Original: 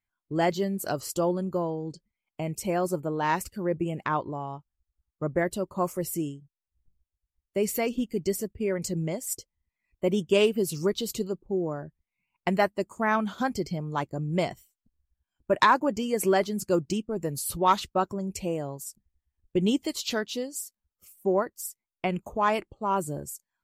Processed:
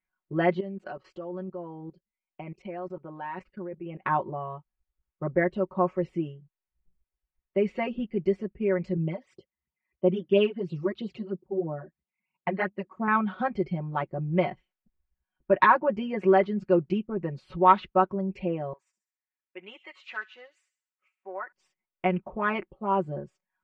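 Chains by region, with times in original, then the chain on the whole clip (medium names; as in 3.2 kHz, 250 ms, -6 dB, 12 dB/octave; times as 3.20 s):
0.60–4.02 s: peaking EQ 89 Hz -7 dB 2.3 oct + level held to a coarse grid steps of 19 dB
8.97–13.08 s: high-pass 72 Hz 24 dB/octave + phase shifter stages 12, 3 Hz, lowest notch 130–2100 Hz
18.73–21.52 s: high-pass 1.3 kHz + high-order bell 4.1 kHz -9.5 dB 1.1 oct + feedback echo behind a high-pass 67 ms, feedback 48%, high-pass 4.1 kHz, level -8 dB
whole clip: low-pass 2.6 kHz 24 dB/octave; bass shelf 170 Hz -5 dB; comb 5.4 ms, depth 98%; trim -1.5 dB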